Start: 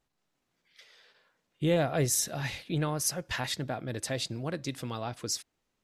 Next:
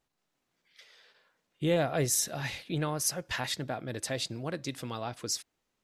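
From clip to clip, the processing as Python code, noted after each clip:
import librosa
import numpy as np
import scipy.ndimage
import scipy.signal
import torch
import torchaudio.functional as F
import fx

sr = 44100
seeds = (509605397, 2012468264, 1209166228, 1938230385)

y = fx.low_shelf(x, sr, hz=190.0, db=-4.0)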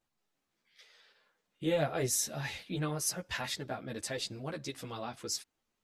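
y = fx.ensemble(x, sr)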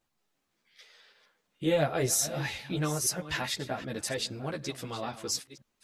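y = fx.reverse_delay(x, sr, ms=511, wet_db=-14)
y = y * 10.0 ** (4.0 / 20.0)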